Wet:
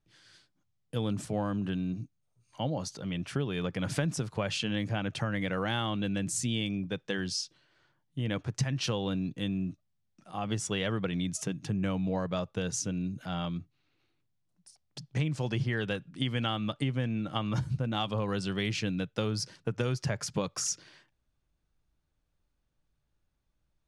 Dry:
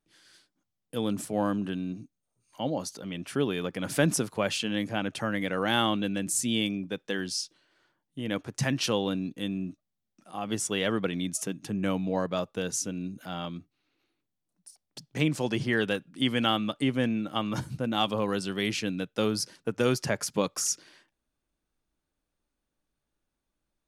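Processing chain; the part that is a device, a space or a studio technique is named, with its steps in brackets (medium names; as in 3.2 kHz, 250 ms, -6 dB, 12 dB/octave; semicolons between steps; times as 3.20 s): jukebox (low-pass 7.2 kHz 12 dB/octave; resonant low shelf 180 Hz +7.5 dB, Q 1.5; compression 5:1, threshold -27 dBFS, peak gain reduction 11 dB)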